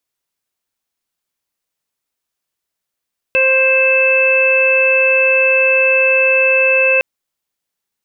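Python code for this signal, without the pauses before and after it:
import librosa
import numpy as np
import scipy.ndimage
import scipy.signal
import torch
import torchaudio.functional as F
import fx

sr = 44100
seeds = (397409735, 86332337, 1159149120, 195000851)

y = fx.additive_steady(sr, length_s=3.66, hz=526.0, level_db=-14.0, upper_db=(-15.0, -8.5, -15, 3.0))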